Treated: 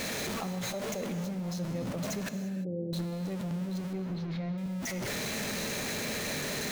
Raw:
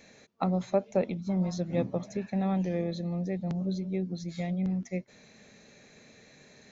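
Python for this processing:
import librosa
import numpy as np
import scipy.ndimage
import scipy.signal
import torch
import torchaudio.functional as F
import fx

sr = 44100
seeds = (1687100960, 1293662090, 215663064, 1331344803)

y = x + 0.5 * 10.0 ** (-31.0 / 20.0) * np.sign(x)
y = fx.ellip_bandpass(y, sr, low_hz=100.0, high_hz=530.0, order=3, stop_db=40, at=(2.29, 2.93))
y = fx.level_steps(y, sr, step_db=19)
y = fx.air_absorb(y, sr, metres=290.0, at=(3.93, 4.58))
y = fx.rev_gated(y, sr, seeds[0], gate_ms=370, shape='flat', drr_db=8.5)
y = y * librosa.db_to_amplitude(3.0)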